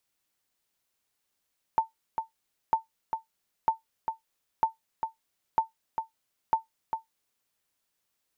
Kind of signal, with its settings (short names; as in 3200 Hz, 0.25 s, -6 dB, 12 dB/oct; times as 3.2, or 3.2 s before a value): sonar ping 895 Hz, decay 0.14 s, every 0.95 s, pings 6, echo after 0.40 s, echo -7 dB -14 dBFS